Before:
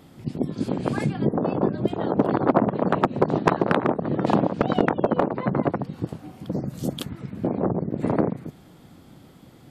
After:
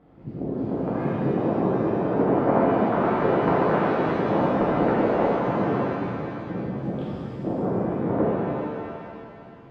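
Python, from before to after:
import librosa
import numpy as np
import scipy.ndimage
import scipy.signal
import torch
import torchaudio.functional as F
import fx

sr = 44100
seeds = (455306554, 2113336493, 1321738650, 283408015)

y = scipy.signal.sosfilt(scipy.signal.butter(2, 1400.0, 'lowpass', fs=sr, output='sos'), x)
y = fx.rev_shimmer(y, sr, seeds[0], rt60_s=2.3, semitones=7, shimmer_db=-8, drr_db=-8.0)
y = y * librosa.db_to_amplitude(-8.0)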